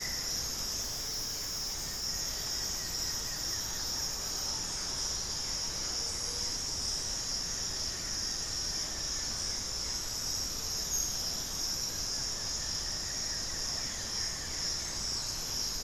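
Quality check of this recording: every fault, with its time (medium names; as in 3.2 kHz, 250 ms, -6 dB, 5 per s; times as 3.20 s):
0.81–2.05 s: clipped -32.5 dBFS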